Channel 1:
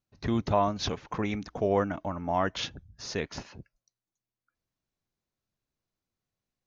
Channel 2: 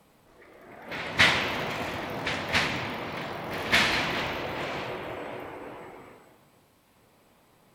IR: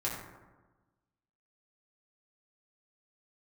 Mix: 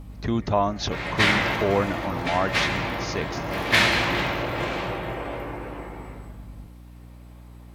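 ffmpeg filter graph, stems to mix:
-filter_complex "[0:a]aeval=exprs='val(0)+0.00708*(sin(2*PI*50*n/s)+sin(2*PI*2*50*n/s)/2+sin(2*PI*3*50*n/s)/3+sin(2*PI*4*50*n/s)/4+sin(2*PI*5*50*n/s)/5)':c=same,volume=3dB,asplit=2[a][b];[1:a]volume=-1dB,asplit=2[c][d];[d]volume=-3dB[e];[b]apad=whole_len=341354[f];[c][f]sidechaincompress=threshold=-34dB:ratio=8:attack=16:release=204[g];[2:a]atrim=start_sample=2205[h];[e][h]afir=irnorm=-1:irlink=0[i];[a][g][i]amix=inputs=3:normalize=0,aeval=exprs='val(0)+0.00708*(sin(2*PI*60*n/s)+sin(2*PI*2*60*n/s)/2+sin(2*PI*3*60*n/s)/3+sin(2*PI*4*60*n/s)/4+sin(2*PI*5*60*n/s)/5)':c=same"

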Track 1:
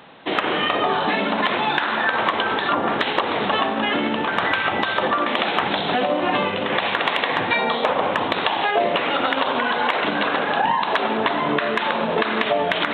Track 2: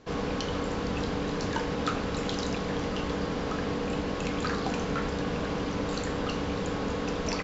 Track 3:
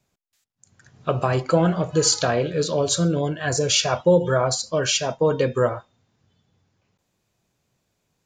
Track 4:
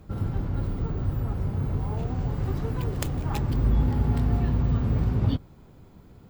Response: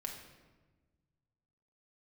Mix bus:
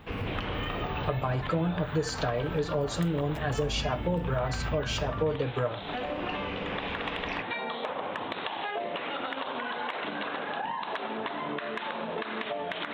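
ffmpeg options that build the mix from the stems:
-filter_complex "[0:a]volume=-10.5dB[a];[1:a]lowpass=f=2.6k:t=q:w=3.9,volume=-4.5dB[b];[2:a]equalizer=f=6.5k:w=0.96:g=-13,aecho=1:1:6.7:0.65,volume=0.5dB,asplit=2[c][d];[3:a]volume=-6.5dB,asplit=2[e][f];[f]volume=-9dB[g];[d]apad=whole_len=327688[h];[b][h]sidechaincompress=threshold=-24dB:ratio=8:attack=16:release=676[i];[4:a]atrim=start_sample=2205[j];[g][j]afir=irnorm=-1:irlink=0[k];[a][i][c][e][k]amix=inputs=5:normalize=0,acompressor=threshold=-31dB:ratio=2.5"

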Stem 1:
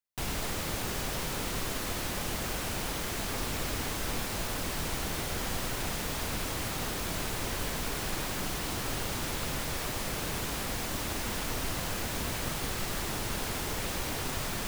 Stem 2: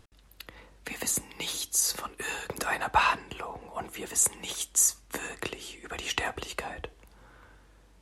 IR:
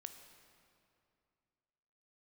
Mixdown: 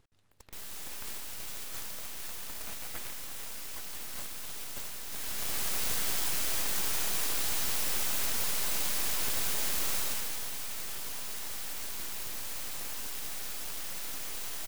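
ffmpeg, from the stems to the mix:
-filter_complex "[0:a]crystalizer=i=2.5:c=0,adelay=350,volume=-3.5dB,afade=t=in:st=5.05:d=0.6:silence=0.298538,afade=t=out:st=9.99:d=0.24:silence=0.421697,asplit=2[a][b];[b]volume=-4.5dB[c];[1:a]acompressor=threshold=-29dB:ratio=6,volume=-9.5dB[d];[c]aecho=0:1:186|372|558|744|930|1116|1302|1488|1674:1|0.57|0.325|0.185|0.106|0.0602|0.0343|0.0195|0.0111[e];[a][d][e]amix=inputs=3:normalize=0,aeval=exprs='abs(val(0))':c=same"

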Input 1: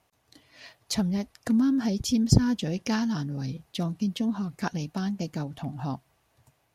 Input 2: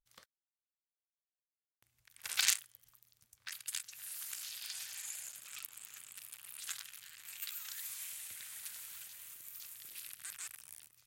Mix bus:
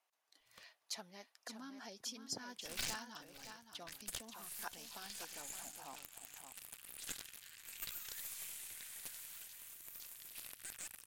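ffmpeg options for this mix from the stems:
-filter_complex "[0:a]highpass=710,volume=-12.5dB,asplit=3[a][b][c];[b]volume=-8.5dB[d];[1:a]bandreject=f=1.3k:w=20,aeval=exprs='(tanh(35.5*val(0)+0.7)-tanh(0.7))/35.5':c=same,adelay=400,volume=1dB,asplit=2[e][f];[f]volume=-21.5dB[g];[c]apad=whole_len=505695[h];[e][h]sidechaincompress=threshold=-53dB:ratio=8:attack=42:release=460[i];[d][g]amix=inputs=2:normalize=0,aecho=0:1:568:1[j];[a][i][j]amix=inputs=3:normalize=0"

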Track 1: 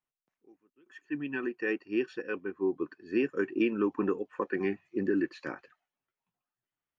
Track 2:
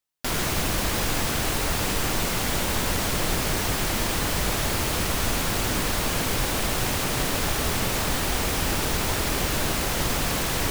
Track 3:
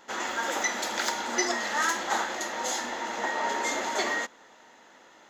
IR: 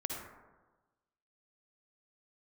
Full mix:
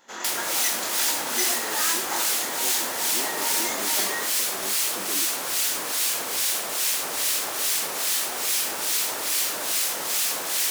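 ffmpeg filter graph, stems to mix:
-filter_complex "[0:a]volume=-12dB[a];[1:a]highpass=440,equalizer=f=7.9k:w=0.32:g=4.5,acrossover=split=1600[b][c];[b]aeval=exprs='val(0)*(1-0.7/2+0.7/2*cos(2*PI*2.4*n/s))':c=same[d];[c]aeval=exprs='val(0)*(1-0.7/2-0.7/2*cos(2*PI*2.4*n/s))':c=same[e];[d][e]amix=inputs=2:normalize=0,volume=-5.5dB,asplit=2[f][g];[g]volume=-6dB[h];[2:a]flanger=delay=20:depth=5:speed=1.8,volume=-1.5dB[i];[3:a]atrim=start_sample=2205[j];[h][j]afir=irnorm=-1:irlink=0[k];[a][f][i][k]amix=inputs=4:normalize=0,highshelf=f=4.6k:g=8"

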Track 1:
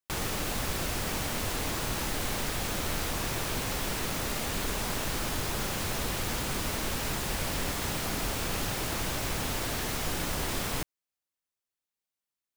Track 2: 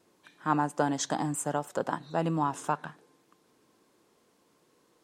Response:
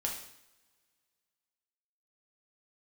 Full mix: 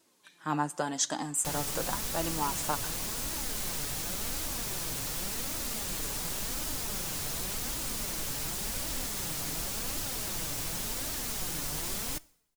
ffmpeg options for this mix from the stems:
-filter_complex "[0:a]bass=f=250:g=2,treble=f=4k:g=10,adelay=1350,volume=-4.5dB,asplit=2[a][b];[b]volume=-20.5dB[c];[1:a]highshelf=f=2.4k:g=12,volume=-2.5dB,asplit=2[d][e];[e]volume=-19dB[f];[2:a]atrim=start_sample=2205[g];[c][f]amix=inputs=2:normalize=0[h];[h][g]afir=irnorm=-1:irlink=0[i];[a][d][i]amix=inputs=3:normalize=0,flanger=delay=3:depth=4.2:regen=46:speed=0.9:shape=triangular"

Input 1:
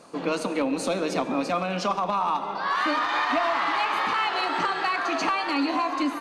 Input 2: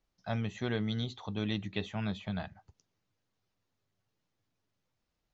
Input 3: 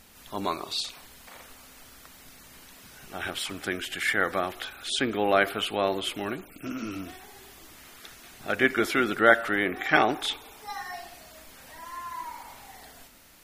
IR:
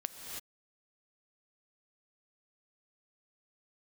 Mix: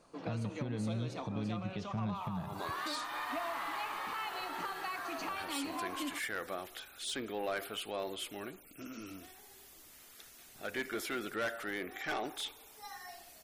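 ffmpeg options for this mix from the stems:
-filter_complex "[0:a]volume=-14dB[a];[1:a]equalizer=f=150:t=o:w=1.4:g=15,volume=1.5dB[b];[2:a]highshelf=f=4.5k:g=10,asoftclip=type=tanh:threshold=-17dB,adelay=2150,volume=-13dB[c];[b][c]amix=inputs=2:normalize=0,equalizer=f=490:w=1.5:g=3.5,acompressor=threshold=-30dB:ratio=6,volume=0dB[d];[a][d]amix=inputs=2:normalize=0,alimiter=level_in=3.5dB:limit=-24dB:level=0:latency=1:release=396,volume=-3.5dB"

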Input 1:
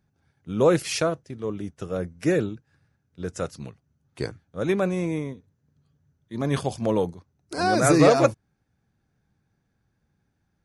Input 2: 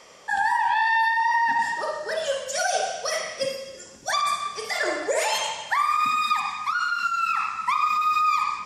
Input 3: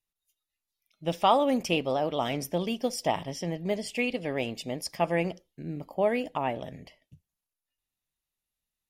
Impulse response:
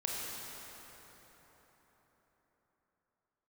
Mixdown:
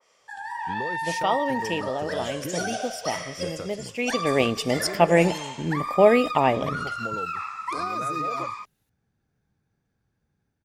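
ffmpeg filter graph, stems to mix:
-filter_complex "[0:a]alimiter=limit=-13dB:level=0:latency=1:release=152,acompressor=threshold=-30dB:ratio=6,adelay=200,volume=-14dB[a];[1:a]lowshelf=f=450:g=-9.5,acompressor=threshold=-23dB:ratio=6,adynamicequalizer=threshold=0.0126:dfrequency=1900:dqfactor=0.7:tfrequency=1900:tqfactor=0.7:attack=5:release=100:ratio=0.375:range=2.5:mode=cutabove:tftype=highshelf,volume=-13.5dB[b];[2:a]volume=-1dB,afade=t=in:st=3.95:d=0.53:silence=0.237137[c];[a][b][c]amix=inputs=3:normalize=0,equalizer=f=440:t=o:w=0.31:g=3,dynaudnorm=f=350:g=3:m=11dB"

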